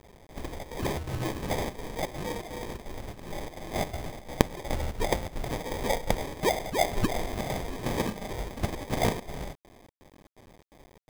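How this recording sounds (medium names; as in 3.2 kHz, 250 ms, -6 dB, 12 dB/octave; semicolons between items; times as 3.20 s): aliases and images of a low sample rate 1.4 kHz, jitter 0%; chopped level 2.8 Hz, depth 60%, duty 75%; a quantiser's noise floor 10-bit, dither none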